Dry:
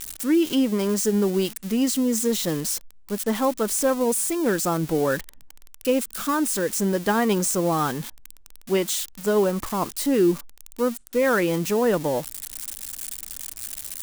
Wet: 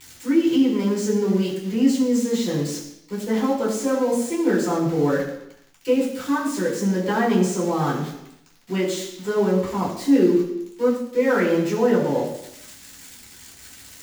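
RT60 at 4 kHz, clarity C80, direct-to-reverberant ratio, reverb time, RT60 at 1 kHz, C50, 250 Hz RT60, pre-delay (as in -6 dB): 0.85 s, 7.0 dB, -7.5 dB, 0.85 s, 0.85 s, 5.0 dB, 0.85 s, 3 ms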